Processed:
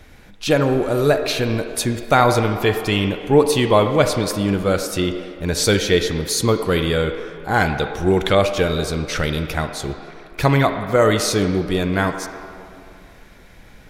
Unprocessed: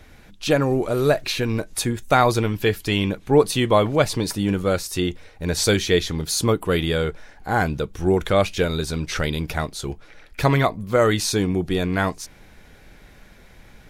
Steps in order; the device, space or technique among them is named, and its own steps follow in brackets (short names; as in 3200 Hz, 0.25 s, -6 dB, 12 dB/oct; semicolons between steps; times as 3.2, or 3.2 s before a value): filtered reverb send (on a send at -6.5 dB: HPF 290 Hz 12 dB/oct + LPF 4000 Hz 12 dB/oct + reverb RT60 2.4 s, pre-delay 32 ms); 7.53–8.35 on the sum: dynamic EQ 3200 Hz, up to +7 dB, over -41 dBFS, Q 0.75; gain +2 dB